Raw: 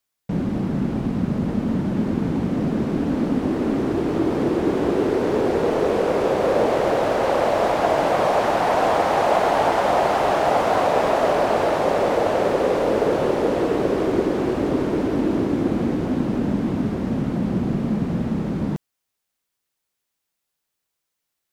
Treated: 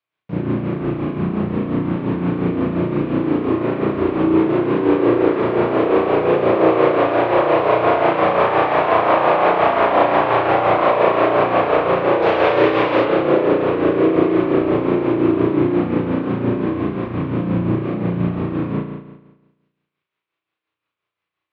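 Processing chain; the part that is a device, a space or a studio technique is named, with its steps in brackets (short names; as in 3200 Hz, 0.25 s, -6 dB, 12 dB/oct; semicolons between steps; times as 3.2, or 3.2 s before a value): 12.22–13.05 high shelf 2100 Hz +11.5 dB; combo amplifier with spring reverb and tremolo (spring tank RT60 1.1 s, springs 34 ms, chirp 30 ms, DRR -7.5 dB; tremolo 5.7 Hz, depth 49%; speaker cabinet 100–3900 Hz, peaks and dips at 110 Hz +6 dB, 230 Hz -8 dB, 330 Hz +5 dB, 800 Hz -3 dB, 1100 Hz +6 dB, 2400 Hz +5 dB); gain -3 dB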